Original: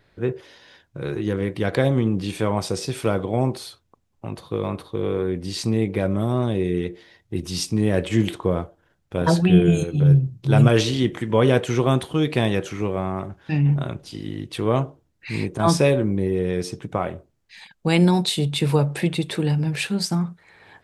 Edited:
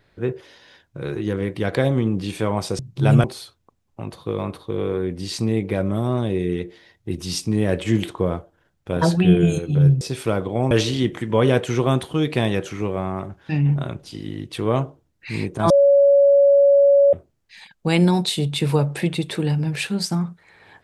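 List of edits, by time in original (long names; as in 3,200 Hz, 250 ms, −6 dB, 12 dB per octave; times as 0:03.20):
0:02.79–0:03.49: swap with 0:10.26–0:10.71
0:15.70–0:17.13: beep over 562 Hz −10 dBFS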